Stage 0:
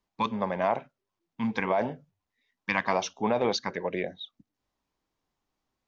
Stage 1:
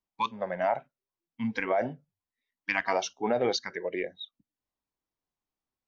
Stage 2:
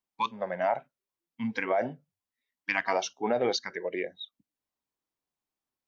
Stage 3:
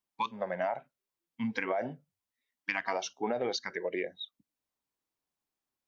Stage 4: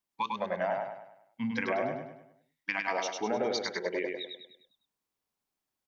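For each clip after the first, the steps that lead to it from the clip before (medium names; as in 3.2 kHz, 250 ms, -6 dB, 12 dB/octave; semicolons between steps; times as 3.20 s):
spectral noise reduction 11 dB
bass shelf 68 Hz -11 dB
compression, threshold -28 dBFS, peak gain reduction 7 dB
feedback delay 101 ms, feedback 44%, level -3.5 dB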